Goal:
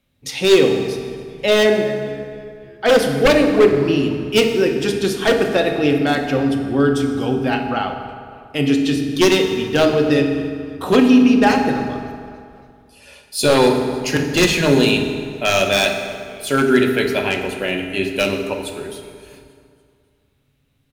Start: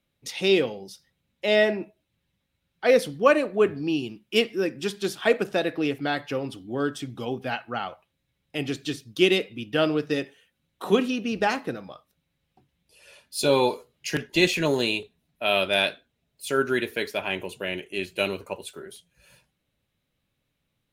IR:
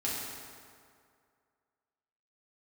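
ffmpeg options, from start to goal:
-filter_complex "[0:a]asplit=5[link_01][link_02][link_03][link_04][link_05];[link_02]adelay=281,afreqshift=-73,volume=-23.5dB[link_06];[link_03]adelay=562,afreqshift=-146,volume=-28.9dB[link_07];[link_04]adelay=843,afreqshift=-219,volume=-34.2dB[link_08];[link_05]adelay=1124,afreqshift=-292,volume=-39.6dB[link_09];[link_01][link_06][link_07][link_08][link_09]amix=inputs=5:normalize=0,aeval=exprs='0.188*(abs(mod(val(0)/0.188+3,4)-2)-1)':channel_layout=same,asplit=2[link_10][link_11];[1:a]atrim=start_sample=2205,lowshelf=frequency=210:gain=10.5[link_12];[link_11][link_12]afir=irnorm=-1:irlink=0,volume=-6.5dB[link_13];[link_10][link_13]amix=inputs=2:normalize=0,volume=4dB"

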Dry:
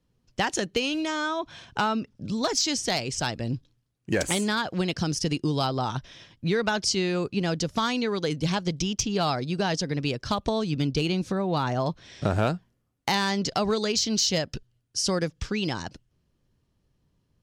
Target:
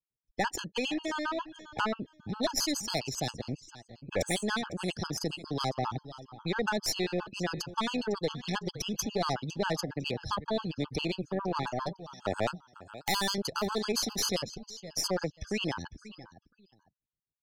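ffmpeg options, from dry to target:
ffmpeg -i in.wav -filter_complex "[0:a]aeval=exprs='if(lt(val(0),0),0.708*val(0),val(0))':channel_layout=same,asettb=1/sr,asplit=3[link_01][link_02][link_03];[link_01]atrim=end=11.634[link_04];[link_02]atrim=start=11.63:end=13.38,asetpts=PTS-STARTPTS,afade=type=in:duration=0.004:curve=qsin,afade=type=out:start_time=1.746:duration=0.004:curve=qsin,aemphasis=mode=production:type=bsi[link_05];[link_03]atrim=start=13.376[link_06];[link_04][link_05]acrossfade=duration=0.004:curve1=hsin:curve2=qsin[link_07];[link_07][link_06]acrossfade=duration=0.004:curve1=qsin:curve2=hsin,afftdn=noise_reduction=26:noise_floor=-41,adynamicequalizer=threshold=0.00501:dfrequency=2200:dqfactor=1.3:tfrequency=2200:tqfactor=1.3:attack=5:release=100:ratio=0.375:range=1.5:mode=cutabove:tftype=bell,asplit=2[link_08][link_09];[link_09]aecho=0:1:505|1010:0.158|0.0365[link_10];[link_08][link_10]amix=inputs=2:normalize=0,aeval=exprs='(tanh(12.6*val(0)+0.75)-tanh(0.75))/12.6':channel_layout=same,acrossover=split=300|4200[link_11][link_12][link_13];[link_11]alimiter=level_in=10dB:limit=-24dB:level=0:latency=1:release=43,volume=-10dB[link_14];[link_14][link_12][link_13]amix=inputs=3:normalize=0,afftfilt=real='re*gt(sin(2*PI*7.4*pts/sr)*(1-2*mod(floor(b*sr/1024/850),2)),0)':imag='im*gt(sin(2*PI*7.4*pts/sr)*(1-2*mod(floor(b*sr/1024/850),2)),0)':win_size=1024:overlap=0.75,volume=4.5dB" out.wav

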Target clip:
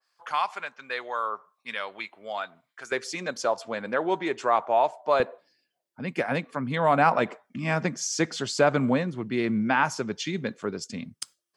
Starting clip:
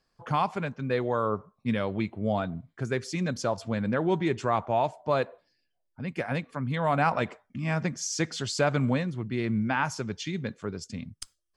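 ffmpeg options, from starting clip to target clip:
ffmpeg -i in.wav -af "asetnsamples=nb_out_samples=441:pad=0,asendcmd='2.92 highpass f 490;5.2 highpass f 210',highpass=1100,adynamicequalizer=threshold=0.00708:dfrequency=1800:dqfactor=0.7:tfrequency=1800:tqfactor=0.7:attack=5:release=100:ratio=0.375:range=2.5:mode=cutabove:tftype=highshelf,volume=5dB" out.wav

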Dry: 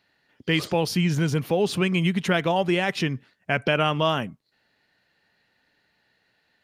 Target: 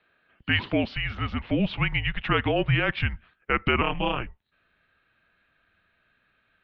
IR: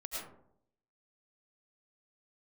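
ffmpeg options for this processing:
-filter_complex "[0:a]asettb=1/sr,asplit=3[link_01][link_02][link_03];[link_01]atrim=end=3.814[link_04];[link_02]atrim=start=3.81:end=4.21,asetpts=PTS-STARTPTS,afade=type=in:duration=0.004:curve=qsin,afade=type=out:start_time=0.396:duration=0.004:curve=qsin,aeval=exprs='val(0)*sin(2*PI*94*n/s)':channel_layout=same[link_05];[link_03]atrim=start=4.206[link_06];[link_04][link_05]acrossfade=duration=0.004:curve1=hsin:curve2=qsin[link_07];[link_07][link_06]acrossfade=duration=0.004:curve1=qsin:curve2=hsin,asubboost=boost=11:cutoff=180,highpass=frequency=330:width_type=q:width=0.5412,highpass=frequency=330:width_type=q:width=1.307,lowpass=frequency=3500:width_type=q:width=0.5176,lowpass=frequency=3500:width_type=q:width=0.7071,lowpass=frequency=3500:width_type=q:width=1.932,afreqshift=-220,volume=2dB"

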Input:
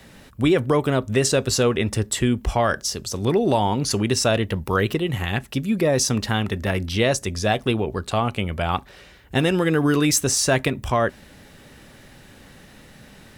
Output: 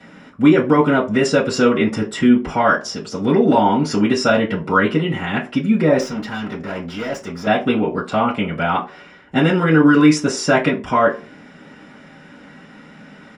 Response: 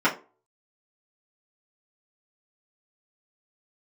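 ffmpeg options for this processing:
-filter_complex "[0:a]aresample=22050,aresample=44100,asettb=1/sr,asplit=3[link_01][link_02][link_03];[link_01]atrim=end=6.004[link_04];[link_02]atrim=start=6:end=7.47,asetpts=PTS-STARTPTS,afade=type=in:duration=0.004:curve=qsin,afade=type=out:start_time=1.466:duration=0.004:curve=qsin,aeval=exprs='(tanh(22.4*val(0)+0.35)-tanh(0.35))/22.4':channel_layout=same[link_05];[link_03]atrim=start=7.466[link_06];[link_04][link_05]acrossfade=duration=0.004:curve1=hsin:curve2=qsin[link_07];[link_07][link_06]acrossfade=duration=0.004:curve1=qsin:curve2=hsin[link_08];[1:a]atrim=start_sample=2205[link_09];[link_08][link_09]afir=irnorm=-1:irlink=0,volume=-11dB"

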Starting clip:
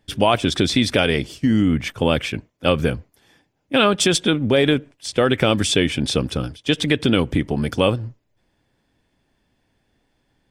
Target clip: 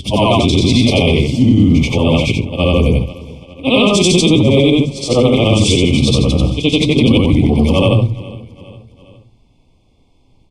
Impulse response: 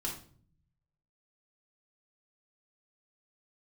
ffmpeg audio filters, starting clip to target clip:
-filter_complex "[0:a]afftfilt=real='re':imag='-im':win_size=8192:overlap=0.75,lowpass=9200,lowshelf=frequency=160:gain=11,bandreject=frequency=50:width_type=h:width=6,bandreject=frequency=100:width_type=h:width=6,bandreject=frequency=150:width_type=h:width=6,bandreject=frequency=200:width_type=h:width=6,acrossover=split=460|1500[link_01][link_02][link_03];[link_02]asoftclip=type=tanh:threshold=-21.5dB[link_04];[link_01][link_04][link_03]amix=inputs=3:normalize=0,flanger=delay=7.5:depth=4.5:regen=-69:speed=0.83:shape=sinusoidal,asuperstop=centerf=1600:order=12:qfactor=1.7,asplit=2[link_05][link_06];[link_06]aecho=0:1:409|818|1227:0.0708|0.0368|0.0191[link_07];[link_05][link_07]amix=inputs=2:normalize=0,alimiter=level_in=18dB:limit=-1dB:release=50:level=0:latency=1,volume=-1dB"

